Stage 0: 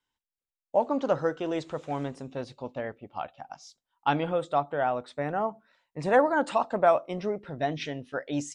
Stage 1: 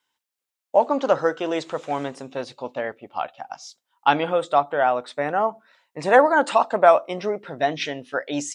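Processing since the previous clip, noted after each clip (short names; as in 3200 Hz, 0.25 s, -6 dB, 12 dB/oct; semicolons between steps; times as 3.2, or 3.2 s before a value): HPF 490 Hz 6 dB/oct; gain +9 dB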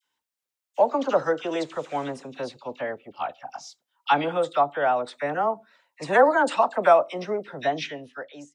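ending faded out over 0.91 s; dispersion lows, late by 48 ms, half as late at 1400 Hz; gain -2.5 dB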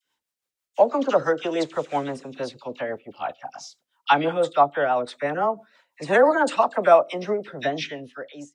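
rotary speaker horn 6 Hz; gain +4.5 dB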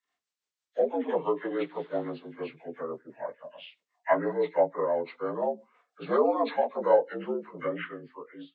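inharmonic rescaling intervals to 79%; gain -5 dB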